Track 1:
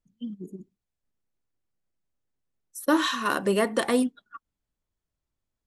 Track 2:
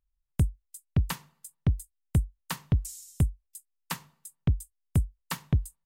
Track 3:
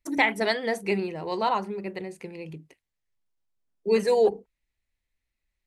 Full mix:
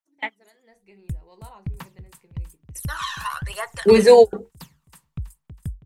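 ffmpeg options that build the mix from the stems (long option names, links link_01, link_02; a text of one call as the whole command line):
ffmpeg -i stem1.wav -i stem2.wav -i stem3.wav -filter_complex "[0:a]flanger=delay=2.1:depth=10:regen=63:speed=1.1:shape=triangular,highpass=frequency=840:width=0.5412,highpass=frequency=840:width=1.3066,volume=-1dB,asplit=2[link_01][link_02];[1:a]adelay=700,volume=-15.5dB,asplit=2[link_03][link_04];[link_04]volume=-8dB[link_05];[2:a]alimiter=limit=-15dB:level=0:latency=1:release=176,flanger=delay=9.6:depth=2.4:regen=-67:speed=0.79:shape=sinusoidal,dynaudnorm=framelen=280:gausssize=7:maxgain=13dB,volume=2dB[link_06];[link_02]apad=whole_len=249843[link_07];[link_06][link_07]sidechaingate=range=-36dB:threshold=-60dB:ratio=16:detection=peak[link_08];[link_01][link_03]amix=inputs=2:normalize=0,aphaser=in_gain=1:out_gain=1:delay=1.3:decay=0.65:speed=1.1:type=triangular,acompressor=threshold=-30dB:ratio=6,volume=0dB[link_09];[link_05]aecho=0:1:323|646|969|1292|1615:1|0.39|0.152|0.0593|0.0231[link_10];[link_08][link_09][link_10]amix=inputs=3:normalize=0,dynaudnorm=framelen=160:gausssize=3:maxgain=5dB" out.wav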